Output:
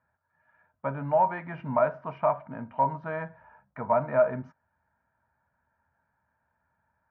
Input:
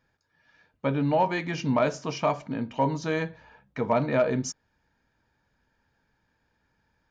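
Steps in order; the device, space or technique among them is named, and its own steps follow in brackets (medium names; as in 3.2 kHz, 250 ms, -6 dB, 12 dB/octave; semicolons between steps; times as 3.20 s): bass cabinet (cabinet simulation 70–2000 Hz, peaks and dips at 81 Hz +7 dB, 310 Hz -9 dB, 450 Hz -7 dB, 640 Hz +9 dB, 960 Hz +8 dB, 1.4 kHz +7 dB); trim -6 dB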